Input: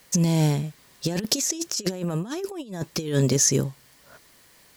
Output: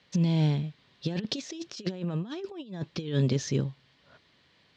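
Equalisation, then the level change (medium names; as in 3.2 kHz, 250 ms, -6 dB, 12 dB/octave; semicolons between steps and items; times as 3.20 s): high-pass 92 Hz; four-pole ladder low-pass 4.3 kHz, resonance 45%; bass shelf 220 Hz +9.5 dB; 0.0 dB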